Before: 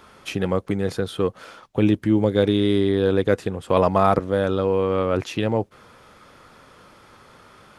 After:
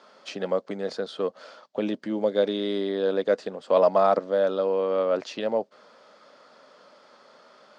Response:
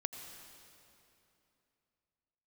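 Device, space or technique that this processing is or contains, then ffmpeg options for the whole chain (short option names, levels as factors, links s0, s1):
television speaker: -af "highpass=f=220:w=0.5412,highpass=f=220:w=1.3066,equalizer=f=330:t=q:w=4:g=-6,equalizer=f=600:t=q:w=4:g=10,equalizer=f=2400:t=q:w=4:g=-4,equalizer=f=4600:t=q:w=4:g=7,lowpass=f=7000:w=0.5412,lowpass=f=7000:w=1.3066,volume=0.531"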